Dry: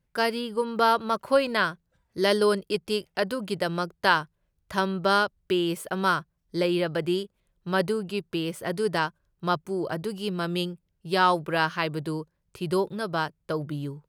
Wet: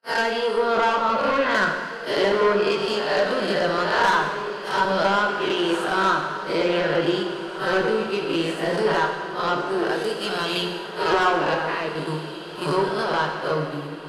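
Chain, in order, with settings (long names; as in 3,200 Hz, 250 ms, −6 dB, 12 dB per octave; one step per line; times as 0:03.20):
peak hold with a rise ahead of every peak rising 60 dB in 0.90 s
noise gate −29 dBFS, range −53 dB
high-pass filter 180 Hz
mains-hum notches 60/120/180/240/300/360 Hz
treble cut that deepens with the level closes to 2,100 Hz, closed at −17 dBFS
0:09.69–0:10.58: spectral tilt +1.5 dB per octave
0:11.54–0:11.98: output level in coarse steps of 16 dB
flanger 0.19 Hz, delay 0.7 ms, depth 7.6 ms, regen +56%
soft clipping −24 dBFS, distortion −11 dB
0:04.11–0:04.85: all-pass dispersion lows, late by 40 ms, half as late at 1,100 Hz
feedback delay with all-pass diffusion 1,854 ms, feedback 44%, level −12 dB
dense smooth reverb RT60 1.5 s, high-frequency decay 0.9×, DRR 2.5 dB
level +8 dB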